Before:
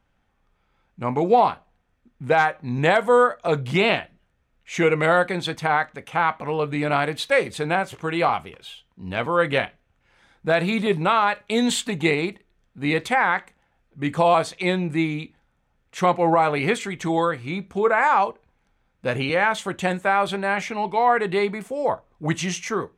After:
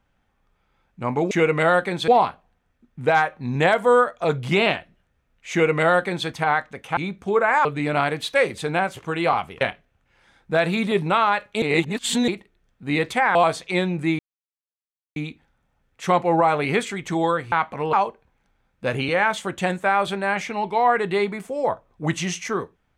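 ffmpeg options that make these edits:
-filter_complex "[0:a]asplit=12[a][b][c][d][e][f][g][h][i][j][k][l];[a]atrim=end=1.312[m];[b]atrim=start=4.738:end=5.512[n];[c]atrim=start=1.308:end=6.202[o];[d]atrim=start=17.458:end=18.142[p];[e]atrim=start=6.608:end=8.572[q];[f]atrim=start=9.558:end=11.572[r];[g]atrim=start=11.568:end=12.232,asetpts=PTS-STARTPTS,areverse[s];[h]atrim=start=12.228:end=13.302[t];[i]atrim=start=14.258:end=15.1,asetpts=PTS-STARTPTS,afade=t=out:st=0.838:d=0.004:c=hsin,apad=pad_dur=0.97[u];[j]atrim=start=15.1:end=17.462,asetpts=PTS-STARTPTS,afade=t=in:d=0.004:c=hsin[v];[k]atrim=start=6.198:end=6.612[w];[l]atrim=start=18.138[x];[m][n]acrossfade=d=0.004:c1=hsin:c2=hsin[y];[y][o]acrossfade=d=0.004:c1=hsin:c2=hsin[z];[z][p]acrossfade=d=0.004:c1=hsin:c2=hsin[aa];[aa][q]acrossfade=d=0.004:c1=hsin:c2=hsin[ab];[ab][r]acrossfade=d=0.004:c1=hsin:c2=hsin[ac];[ac][s]acrossfade=d=0.004:c1=hsin:c2=hsin[ad];[ad][t]acrossfade=d=0.004:c1=hsin:c2=hsin[ae];[u][v]concat=n=2:v=0:a=1[af];[ae][af]acrossfade=d=0.004:c1=hsin:c2=hsin[ag];[ag][w]acrossfade=d=0.004:c1=hsin:c2=hsin[ah];[ah][x]acrossfade=d=0.004:c1=hsin:c2=hsin"

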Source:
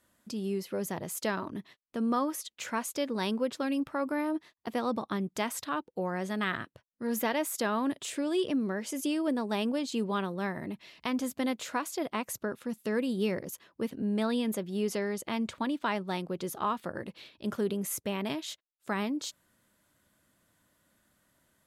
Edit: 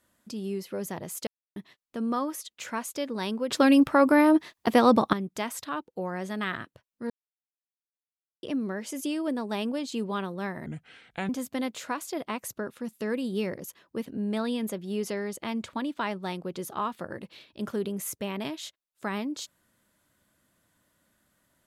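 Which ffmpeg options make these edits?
-filter_complex "[0:a]asplit=9[a][b][c][d][e][f][g][h][i];[a]atrim=end=1.27,asetpts=PTS-STARTPTS,afade=t=out:st=1.266:d=0.004:c=hsin[j];[b]atrim=start=1.27:end=1.56,asetpts=PTS-STARTPTS,volume=0[k];[c]atrim=start=1.56:end=3.502,asetpts=PTS-STARTPTS,afade=t=in:d=0.004:c=hsin[l];[d]atrim=start=3.498:end=5.132,asetpts=PTS-STARTPTS,volume=12dB[m];[e]atrim=start=5.128:end=7.1,asetpts=PTS-STARTPTS,afade=t=out:st=1.968:d=0.004:c=hsin[n];[f]atrim=start=7.1:end=8.43,asetpts=PTS-STARTPTS,volume=0[o];[g]atrim=start=8.43:end=10.664,asetpts=PTS-STARTPTS,afade=t=in:d=0.004:c=hsin[p];[h]atrim=start=10.66:end=11.14,asetpts=PTS-STARTPTS,asetrate=33516,aresample=44100[q];[i]atrim=start=11.136[r];[j][k][l]concat=n=3:v=0:a=1[s];[s][m]acrossfade=d=0.004:c1=hsin:c2=hsin[t];[n][o][p]concat=n=3:v=0:a=1[u];[t][u]acrossfade=d=0.004:c1=hsin:c2=hsin[v];[v][q]acrossfade=d=0.004:c1=hsin:c2=hsin[w];[w][r]acrossfade=d=0.004:c1=hsin:c2=hsin"

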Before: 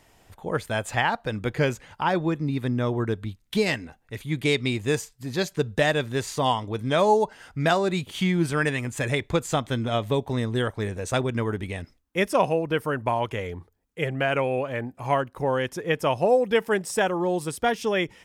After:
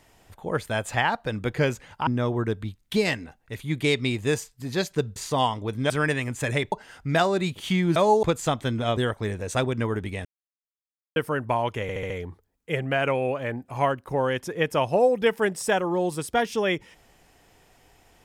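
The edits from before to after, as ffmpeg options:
-filter_complex "[0:a]asplit=14[a][b][c][d][e][f][g][h][i][j][k][l][m][n];[a]atrim=end=2.072[o];[b]atrim=start=2.678:end=5.772[p];[c]atrim=start=6.218:end=6.962[q];[d]atrim=start=8.468:end=9.292[r];[e]atrim=start=7.228:end=8.472[s];[f]atrim=start=6.958:end=7.232[t];[g]atrim=start=9.288:end=10.032[u];[h]atrim=start=10.538:end=11.82,asetpts=PTS-STARTPTS,afade=t=out:st=1.278:d=0.004:c=hsin[v];[i]atrim=start=11.82:end=12.73,asetpts=PTS-STARTPTS,volume=0[w];[j]atrim=start=12.73:end=13.462,asetpts=PTS-STARTPTS,afade=t=in:d=0.004:c=hsin[x];[k]atrim=start=13.388:end=13.462[y];[l]atrim=start=13.388:end=13.462[z];[m]atrim=start=13.388:end=13.462[aa];[n]atrim=start=13.388[ab];[o][p]acrossfade=d=0.004:c1=hsin:c2=hsin[ac];[ac][q]acrossfade=d=0.004:c1=hsin:c2=hsin[ad];[ad][r]acrossfade=d=0.004:c1=hsin:c2=hsin[ae];[ae][s]acrossfade=d=0.004:c1=hsin:c2=hsin[af];[af][t]acrossfade=d=0.004:c1=hsin:c2=hsin[ag];[ag][u]acrossfade=d=0.004:c1=hsin:c2=hsin[ah];[v][w][x]concat=n=3:v=0:a=1[ai];[ah][ai]acrossfade=d=0.004:c1=hsin:c2=hsin[aj];[aj][y]acrossfade=d=0.004:c1=hsin:c2=hsin[ak];[ak][z]acrossfade=d=0.004:c1=hsin:c2=hsin[al];[al][aa]acrossfade=d=0.004:c1=hsin:c2=hsin[am];[am][ab]acrossfade=d=0.004:c1=hsin:c2=hsin"

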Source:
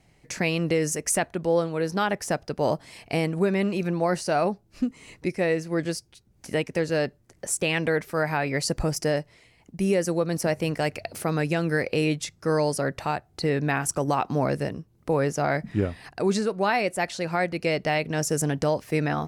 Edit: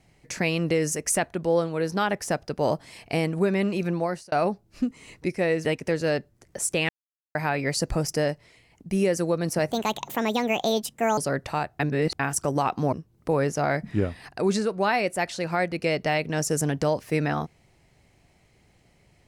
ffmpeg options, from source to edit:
-filter_complex "[0:a]asplit=10[a][b][c][d][e][f][g][h][i][j];[a]atrim=end=4.32,asetpts=PTS-STARTPTS,afade=t=out:st=3.95:d=0.37[k];[b]atrim=start=4.32:end=5.652,asetpts=PTS-STARTPTS,afade=t=in:d=0.004:c=hsin[l];[c]atrim=start=6.528:end=7.77,asetpts=PTS-STARTPTS,afade=t=out:st=1.238:d=0.004:c=hsin[m];[d]atrim=start=7.77:end=8.23,asetpts=PTS-STARTPTS,volume=0[n];[e]atrim=start=8.23:end=10.594,asetpts=PTS-STARTPTS,afade=t=in:d=0.004:c=hsin[o];[f]atrim=start=10.59:end=12.7,asetpts=PTS-STARTPTS,asetrate=63504,aresample=44100[p];[g]atrim=start=12.696:end=13.322[q];[h]atrim=start=13.318:end=13.722,asetpts=PTS-STARTPTS,areverse[r];[i]atrim=start=13.718:end=14.452[s];[j]atrim=start=14.728[t];[k][l]concat=n=2:v=0:a=1[u];[m][n][o]concat=n=3:v=0:a=1[v];[u][v]acrossfade=d=0.004:c1=hsin:c2=hsin[w];[w][p]acrossfade=d=0.004:c1=hsin:c2=hsin[x];[x][q]acrossfade=d=0.004:c1=hsin:c2=hsin[y];[y][r]acrossfade=d=0.004:c1=hsin:c2=hsin[z];[z][s]acrossfade=d=0.004:c1=hsin:c2=hsin[aa];[aa][t]acrossfade=d=0.004:c1=hsin:c2=hsin"

